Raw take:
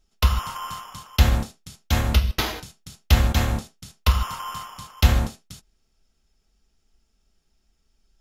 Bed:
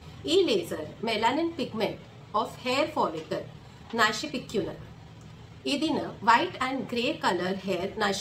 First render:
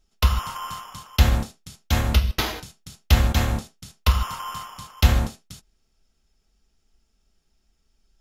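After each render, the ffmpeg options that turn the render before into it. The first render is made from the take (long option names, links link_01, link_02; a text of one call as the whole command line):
ffmpeg -i in.wav -af anull out.wav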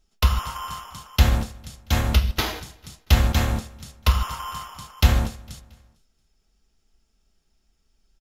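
ffmpeg -i in.wav -af "aecho=1:1:227|454|681:0.075|0.0352|0.0166" out.wav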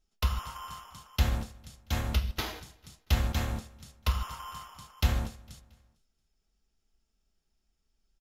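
ffmpeg -i in.wav -af "volume=-9.5dB" out.wav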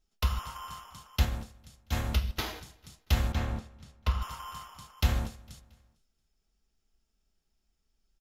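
ffmpeg -i in.wav -filter_complex "[0:a]asettb=1/sr,asplit=3[link_01][link_02][link_03];[link_01]atrim=end=3.324[link_04];[link_02]atrim=start=3.32:end=4.22,asetpts=PTS-STARTPTS,afade=type=in:duration=0.004:curve=qsin,afade=type=out:start_time=0.896:duration=0.004:curve=qsin,lowpass=frequency=2700:poles=1[link_05];[link_03]atrim=start=4.216[link_06];[link_04][link_05]acrossfade=duration=0.004:curve1=hsin:curve2=qsin[link_07];[link_07][link_06]acrossfade=duration=0.004:curve1=qsin:curve2=hsin,asplit=3[link_08][link_09][link_10];[link_08]atrim=end=1.252[link_11];[link_09]atrim=start=1.248:end=1.922,asetpts=PTS-STARTPTS,volume=-4.5dB[link_12];[link_10]atrim=start=1.918[link_13];[link_11][link_12]acrossfade=duration=0.004:curve1=hsin:curve2=hsin[link_14];[link_14][link_13]acrossfade=duration=0.004:curve1=hsin:curve2=hsin" out.wav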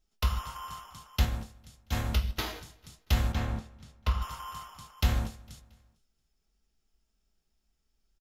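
ffmpeg -i in.wav -filter_complex "[0:a]asplit=2[link_01][link_02];[link_02]adelay=19,volume=-12dB[link_03];[link_01][link_03]amix=inputs=2:normalize=0" out.wav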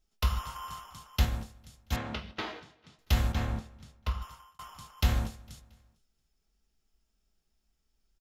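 ffmpeg -i in.wav -filter_complex "[0:a]asettb=1/sr,asplit=3[link_01][link_02][link_03];[link_01]atrim=end=1.964[link_04];[link_02]atrim=start=1.96:end=2.99,asetpts=PTS-STARTPTS,afade=type=in:duration=0.004:curve=qsin,afade=type=out:start_time=1.026:duration=0.004:curve=qsin,highpass=170,lowpass=3200[link_05];[link_03]atrim=start=2.986[link_06];[link_04][link_05]acrossfade=duration=0.004:curve1=hsin:curve2=qsin[link_07];[link_07][link_06]acrossfade=duration=0.004:curve1=qsin:curve2=hsin,asplit=2[link_08][link_09];[link_08]atrim=end=4.59,asetpts=PTS-STARTPTS,afade=type=out:start_time=3.81:duration=0.78[link_10];[link_09]atrim=start=4.59,asetpts=PTS-STARTPTS,afade=type=in:duration=0.004:curve=hsin[link_11];[link_10][link_11]concat=n=2:v=0:a=1" out.wav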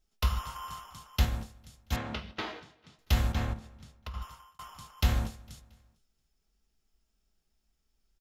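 ffmpeg -i in.wav -filter_complex "[0:a]asettb=1/sr,asplit=3[link_01][link_02][link_03];[link_01]atrim=end=3.534[link_04];[link_02]atrim=start=3.53:end=4.14,asetpts=PTS-STARTPTS,afade=type=in:duration=0.004:curve=qsin,afade=type=out:start_time=0.606:duration=0.004:curve=qsin,acompressor=threshold=-38dB:ratio=4:attack=3.2:release=140:knee=1:detection=peak[link_05];[link_03]atrim=start=4.136[link_06];[link_04][link_05]acrossfade=duration=0.004:curve1=hsin:curve2=qsin[link_07];[link_07][link_06]acrossfade=duration=0.004:curve1=qsin:curve2=hsin" out.wav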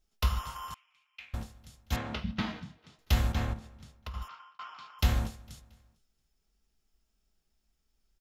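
ffmpeg -i in.wav -filter_complex "[0:a]asettb=1/sr,asplit=3[link_01][link_02][link_03];[link_01]atrim=end=0.744[link_04];[link_02]atrim=start=0.74:end=1.34,asetpts=PTS-STARTPTS,afade=type=in:duration=0.004:curve=qsin,afade=type=out:start_time=0.596:duration=0.004:curve=qsin,bandpass=frequency=2400:width_type=q:width=10[link_05];[link_03]atrim=start=1.336[link_06];[link_04][link_05]acrossfade=duration=0.004:curve1=hsin:curve2=qsin[link_07];[link_07][link_06]acrossfade=duration=0.004:curve1=qsin:curve2=hsin,asettb=1/sr,asplit=3[link_08][link_09][link_10];[link_08]atrim=end=2.244[link_11];[link_09]atrim=start=2.24:end=2.78,asetpts=PTS-STARTPTS,afade=type=in:duration=0.004:curve=qsin,afade=type=out:start_time=0.536:duration=0.004:curve=qsin,lowshelf=frequency=280:width_type=q:width=3:gain=10[link_12];[link_10]atrim=start=2.776[link_13];[link_11][link_12]acrossfade=duration=0.004:curve1=hsin:curve2=qsin[link_14];[link_14][link_13]acrossfade=duration=0.004:curve1=qsin:curve2=hsin,asettb=1/sr,asplit=3[link_15][link_16][link_17];[link_15]atrim=end=4.284[link_18];[link_16]atrim=start=4.28:end=4.99,asetpts=PTS-STARTPTS,afade=type=in:duration=0.004:curve=qsin,afade=type=out:start_time=0.706:duration=0.004:curve=qsin,highpass=380,equalizer=frequency=530:width_type=q:width=4:gain=-5,equalizer=frequency=1400:width_type=q:width=4:gain=9,equalizer=frequency=2400:width_type=q:width=4:gain=7,equalizer=frequency=4300:width_type=q:width=4:gain=3,lowpass=frequency=4600:width=0.5412,lowpass=frequency=4600:width=1.3066[link_19];[link_17]atrim=start=4.986[link_20];[link_18][link_19]acrossfade=duration=0.004:curve1=hsin:curve2=qsin[link_21];[link_21][link_20]acrossfade=duration=0.004:curve1=qsin:curve2=hsin" out.wav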